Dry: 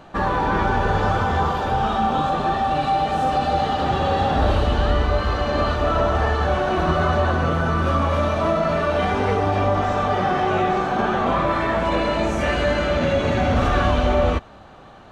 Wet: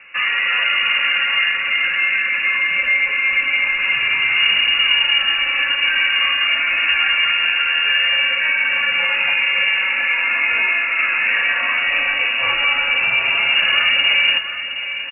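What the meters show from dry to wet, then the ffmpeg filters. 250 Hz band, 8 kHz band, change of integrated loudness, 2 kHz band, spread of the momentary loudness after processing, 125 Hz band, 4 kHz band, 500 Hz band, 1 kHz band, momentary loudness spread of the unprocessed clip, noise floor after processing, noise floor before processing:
below −20 dB, can't be measured, +5.5 dB, +14.5 dB, 3 LU, below −25 dB, +17.0 dB, −17.0 dB, −8.5 dB, 2 LU, −24 dBFS, −44 dBFS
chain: -af "lowpass=frequency=2500:width_type=q:width=0.5098,lowpass=frequency=2500:width_type=q:width=0.6013,lowpass=frequency=2500:width_type=q:width=0.9,lowpass=frequency=2500:width_type=q:width=2.563,afreqshift=-2900,aecho=1:1:716:0.316,volume=2dB"

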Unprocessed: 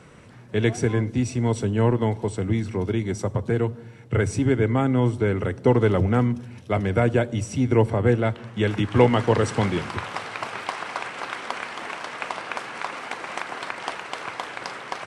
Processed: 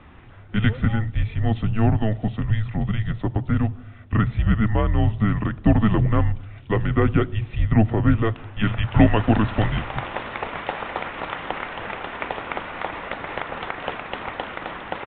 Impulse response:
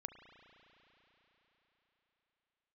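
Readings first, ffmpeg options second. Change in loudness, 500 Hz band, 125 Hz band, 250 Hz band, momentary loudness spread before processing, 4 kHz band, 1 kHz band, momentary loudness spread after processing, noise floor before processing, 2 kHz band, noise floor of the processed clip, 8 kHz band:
+1.0 dB, −5.5 dB, +3.0 dB, +1.5 dB, 12 LU, −0.5 dB, +0.5 dB, 11 LU, −44 dBFS, +0.5 dB, −43 dBFS, below −40 dB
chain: -af "afreqshift=-220,aresample=8000,aresample=44100,volume=2dB"

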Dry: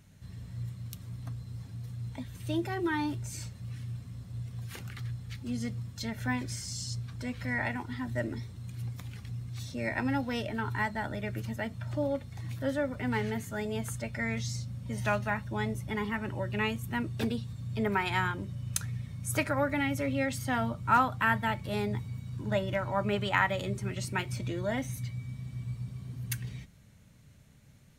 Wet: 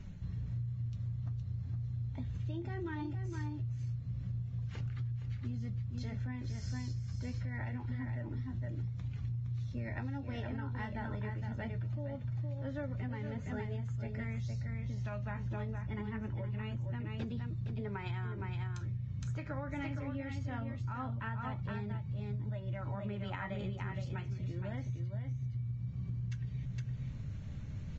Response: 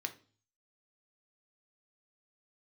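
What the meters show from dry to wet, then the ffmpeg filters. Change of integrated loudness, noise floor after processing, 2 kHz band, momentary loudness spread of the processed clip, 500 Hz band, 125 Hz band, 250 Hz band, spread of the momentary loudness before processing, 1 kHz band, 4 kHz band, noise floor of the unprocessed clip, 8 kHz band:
−6.0 dB, −43 dBFS, −14.0 dB, 1 LU, −11.5 dB, 0.0 dB, −7.5 dB, 12 LU, −14.0 dB, −14.5 dB, −56 dBFS, below −20 dB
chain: -af "areverse,acompressor=mode=upward:threshold=-41dB:ratio=2.5,areverse,flanger=delay=5.1:depth=8:regen=61:speed=0.23:shape=triangular,aemphasis=mode=reproduction:type=bsi,aresample=16000,aresample=44100,adynamicequalizer=threshold=0.00631:dfrequency=130:dqfactor=5.8:tfrequency=130:tqfactor=5.8:attack=5:release=100:ratio=0.375:range=2:mode=boostabove:tftype=bell,aecho=1:1:465:0.501,alimiter=limit=-22.5dB:level=0:latency=1:release=401,acompressor=threshold=-37dB:ratio=12,volume=2dB" -ar 22050 -c:a libvorbis -b:a 32k

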